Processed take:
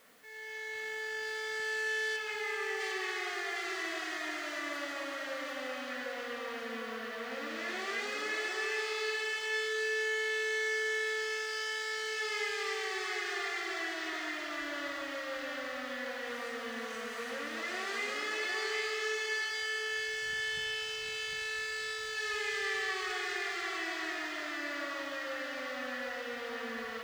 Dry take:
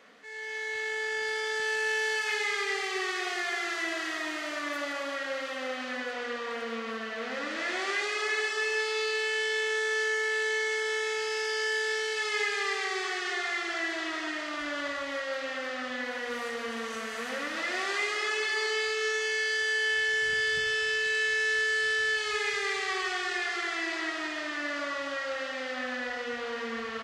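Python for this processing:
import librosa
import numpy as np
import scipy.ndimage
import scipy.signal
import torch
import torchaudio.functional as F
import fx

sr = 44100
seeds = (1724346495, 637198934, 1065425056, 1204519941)

y = fx.lowpass(x, sr, hz=fx.line((2.16, 3700.0), (2.79, 1900.0)), slope=12, at=(2.16, 2.79), fade=0.02)
y = fx.quant_dither(y, sr, seeds[0], bits=10, dither='triangular')
y = y + 10.0 ** (-3.5 / 20.0) * np.pad(y, (int(754 * sr / 1000.0), 0))[:len(y)]
y = y * librosa.db_to_amplitude(-6.5)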